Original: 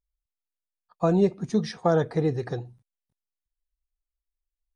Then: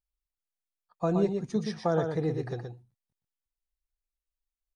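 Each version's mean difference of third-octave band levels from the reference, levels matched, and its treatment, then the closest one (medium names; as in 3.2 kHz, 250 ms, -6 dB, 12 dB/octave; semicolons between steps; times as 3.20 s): 3.5 dB: delay 122 ms -6 dB; trim -5.5 dB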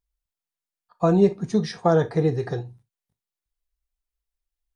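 1.0 dB: gated-style reverb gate 90 ms falling, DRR 8.5 dB; trim +2 dB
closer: second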